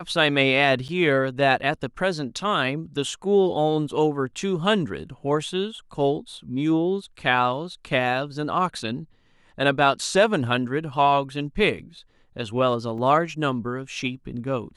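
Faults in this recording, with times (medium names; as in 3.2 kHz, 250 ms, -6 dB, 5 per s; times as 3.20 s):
0.88–0.89 s: dropout 8.4 ms
12.98 s: dropout 3.3 ms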